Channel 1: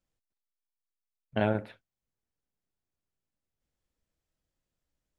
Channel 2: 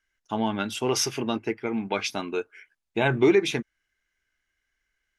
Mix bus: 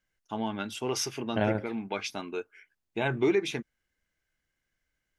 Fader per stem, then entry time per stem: 0.0, −6.0 decibels; 0.00, 0.00 seconds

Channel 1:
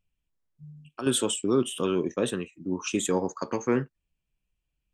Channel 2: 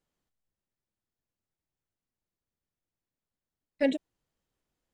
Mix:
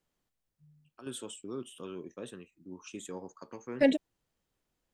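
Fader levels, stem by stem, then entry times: −16.0, +2.0 decibels; 0.00, 0.00 seconds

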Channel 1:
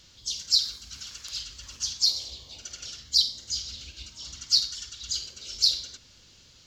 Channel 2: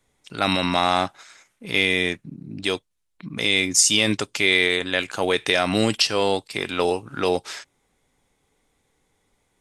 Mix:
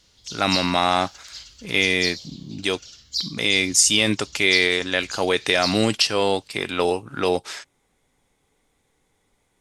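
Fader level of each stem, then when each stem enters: −4.5, +0.5 decibels; 0.00, 0.00 seconds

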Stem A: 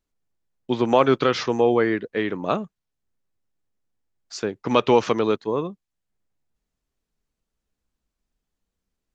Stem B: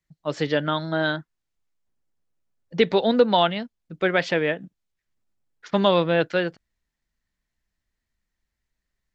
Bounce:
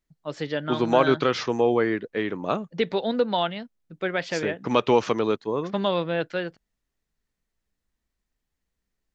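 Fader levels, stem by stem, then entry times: −2.5, −5.5 decibels; 0.00, 0.00 seconds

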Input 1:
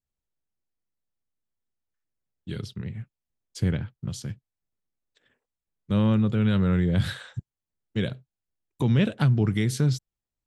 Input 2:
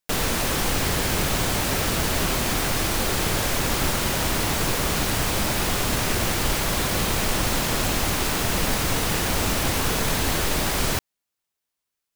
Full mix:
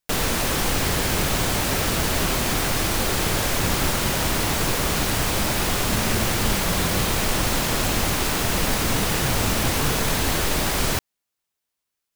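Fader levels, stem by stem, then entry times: −9.0, +1.0 decibels; 0.00, 0.00 seconds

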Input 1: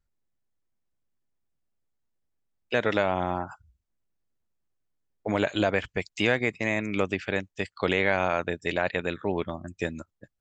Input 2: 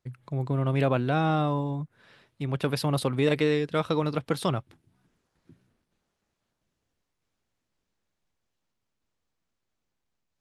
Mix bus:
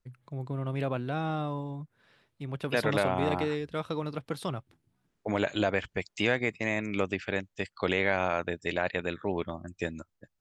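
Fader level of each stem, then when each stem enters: −3.0, −7.0 decibels; 0.00, 0.00 seconds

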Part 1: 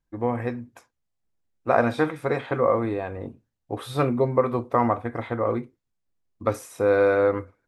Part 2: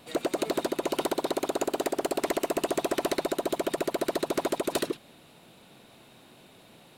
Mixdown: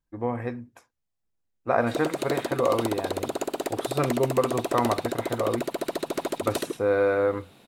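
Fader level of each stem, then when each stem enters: −3.0, −1.0 decibels; 0.00, 1.80 seconds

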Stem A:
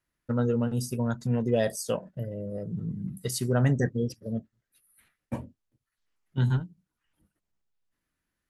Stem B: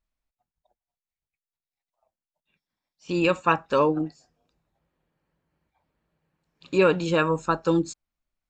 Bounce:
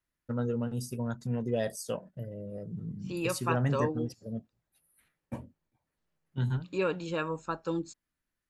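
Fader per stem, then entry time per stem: −5.5, −10.5 decibels; 0.00, 0.00 seconds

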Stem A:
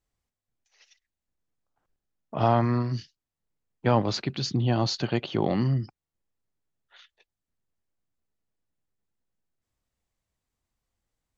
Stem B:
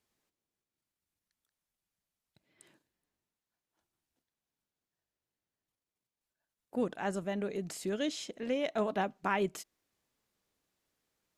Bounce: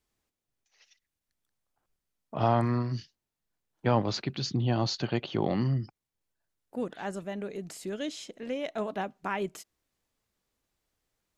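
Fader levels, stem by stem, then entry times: −3.0, −1.0 decibels; 0.00, 0.00 seconds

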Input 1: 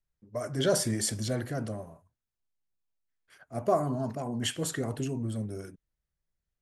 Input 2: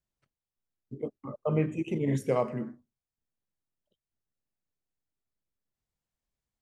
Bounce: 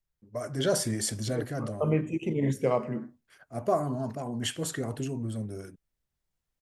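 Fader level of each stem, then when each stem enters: −0.5, +1.0 decibels; 0.00, 0.35 seconds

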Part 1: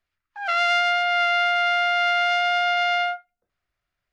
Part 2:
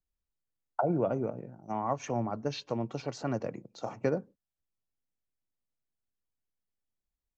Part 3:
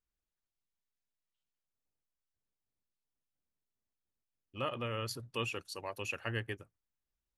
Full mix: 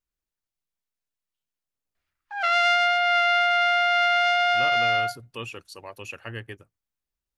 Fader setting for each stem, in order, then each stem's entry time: 0.0 dB, muted, +1.0 dB; 1.95 s, muted, 0.00 s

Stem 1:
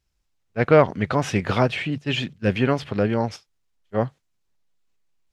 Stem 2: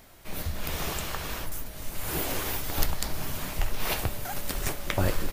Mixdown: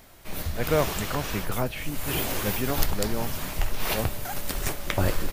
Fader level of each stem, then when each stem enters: −9.0, +1.5 decibels; 0.00, 0.00 seconds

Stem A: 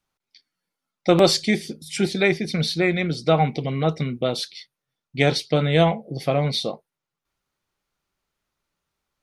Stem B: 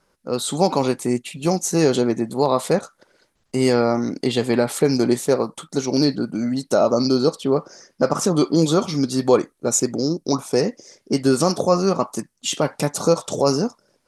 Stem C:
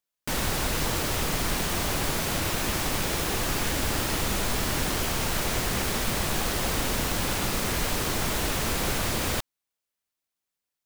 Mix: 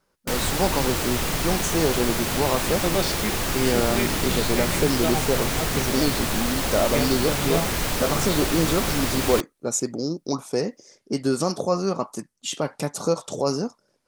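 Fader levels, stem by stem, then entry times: −9.0, −5.5, +2.0 decibels; 1.75, 0.00, 0.00 seconds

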